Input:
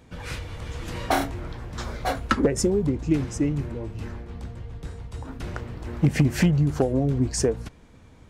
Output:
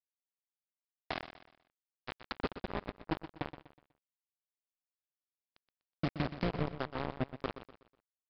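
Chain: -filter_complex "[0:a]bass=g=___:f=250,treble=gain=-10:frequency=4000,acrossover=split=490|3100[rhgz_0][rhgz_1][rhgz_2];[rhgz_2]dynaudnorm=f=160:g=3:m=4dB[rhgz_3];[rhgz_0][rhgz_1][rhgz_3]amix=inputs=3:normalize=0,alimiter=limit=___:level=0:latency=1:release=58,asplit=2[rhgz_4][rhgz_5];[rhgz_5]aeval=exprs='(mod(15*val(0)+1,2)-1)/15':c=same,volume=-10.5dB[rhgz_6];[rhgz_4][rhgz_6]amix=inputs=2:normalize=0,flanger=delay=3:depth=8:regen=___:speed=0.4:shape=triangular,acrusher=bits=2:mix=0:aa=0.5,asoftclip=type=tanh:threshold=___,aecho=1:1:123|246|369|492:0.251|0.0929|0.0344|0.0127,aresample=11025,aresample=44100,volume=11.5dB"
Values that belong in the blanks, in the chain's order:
0, -12.5dB, -89, -34.5dB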